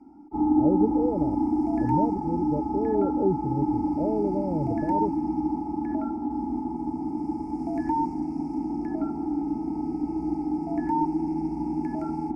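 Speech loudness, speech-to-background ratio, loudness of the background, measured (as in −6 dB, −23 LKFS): −30.0 LKFS, −2.5 dB, −27.5 LKFS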